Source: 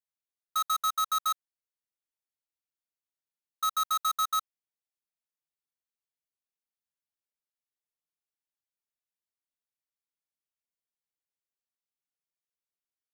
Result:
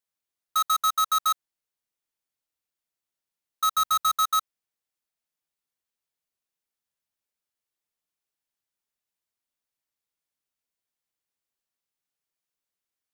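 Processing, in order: 3.74–4.14 low shelf 200 Hz +6 dB; gain +5 dB

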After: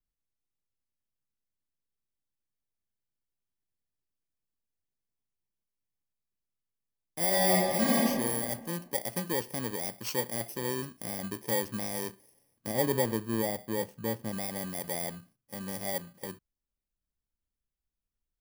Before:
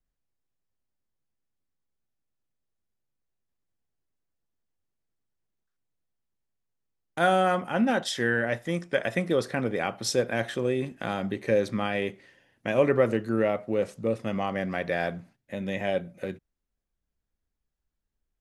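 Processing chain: FFT order left unsorted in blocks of 32 samples; 7.27–8.05 reverb throw, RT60 1.7 s, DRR -5.5 dB; 12.67–14.32 tilt shelf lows +3.5 dB, about 830 Hz; gain -6.5 dB

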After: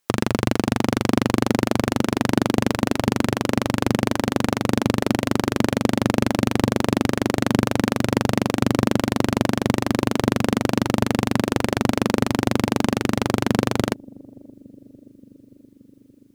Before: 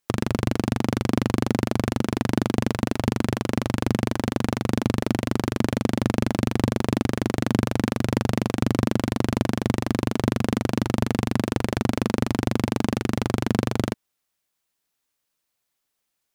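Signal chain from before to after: low shelf 160 Hz -7 dB; on a send: analogue delay 0.575 s, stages 2048, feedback 73%, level -23.5 dB; on the sum: gain +5 dB

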